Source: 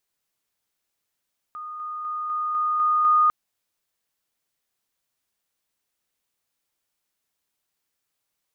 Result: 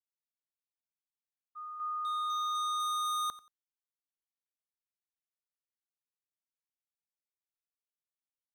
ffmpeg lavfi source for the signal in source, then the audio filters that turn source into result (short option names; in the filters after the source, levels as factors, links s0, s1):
-f lavfi -i "aevalsrc='pow(10,(-32.5+3*floor(t/0.25))/20)*sin(2*PI*1230*t)':d=1.75:s=44100"
-af "agate=range=0.0224:threshold=0.0316:ratio=3:detection=peak,asoftclip=type=hard:threshold=0.0251,aecho=1:1:90|180:0.133|0.0307"